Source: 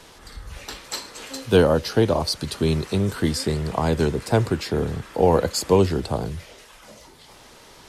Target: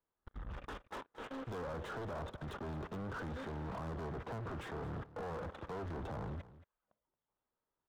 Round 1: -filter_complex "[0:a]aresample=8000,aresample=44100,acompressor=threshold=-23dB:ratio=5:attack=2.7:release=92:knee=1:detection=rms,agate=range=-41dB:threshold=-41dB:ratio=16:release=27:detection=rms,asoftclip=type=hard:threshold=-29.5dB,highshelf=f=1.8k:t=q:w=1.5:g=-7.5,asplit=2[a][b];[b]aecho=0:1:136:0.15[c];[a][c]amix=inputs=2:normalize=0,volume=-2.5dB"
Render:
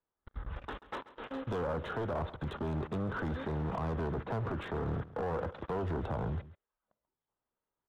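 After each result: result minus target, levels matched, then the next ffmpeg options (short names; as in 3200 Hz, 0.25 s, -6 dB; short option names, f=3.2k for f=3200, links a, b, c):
echo 89 ms early; hard clip: distortion -4 dB
-filter_complex "[0:a]aresample=8000,aresample=44100,acompressor=threshold=-23dB:ratio=5:attack=2.7:release=92:knee=1:detection=rms,agate=range=-41dB:threshold=-41dB:ratio=16:release=27:detection=rms,asoftclip=type=hard:threshold=-29.5dB,highshelf=f=1.8k:t=q:w=1.5:g=-7.5,asplit=2[a][b];[b]aecho=0:1:225:0.15[c];[a][c]amix=inputs=2:normalize=0,volume=-2.5dB"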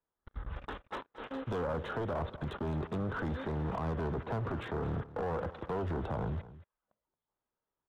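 hard clip: distortion -4 dB
-filter_complex "[0:a]aresample=8000,aresample=44100,acompressor=threshold=-23dB:ratio=5:attack=2.7:release=92:knee=1:detection=rms,agate=range=-41dB:threshold=-41dB:ratio=16:release=27:detection=rms,asoftclip=type=hard:threshold=-38.5dB,highshelf=f=1.8k:t=q:w=1.5:g=-7.5,asplit=2[a][b];[b]aecho=0:1:225:0.15[c];[a][c]amix=inputs=2:normalize=0,volume=-2.5dB"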